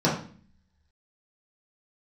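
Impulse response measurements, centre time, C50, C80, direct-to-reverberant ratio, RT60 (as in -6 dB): 32 ms, 5.5 dB, 10.0 dB, -7.0 dB, 0.45 s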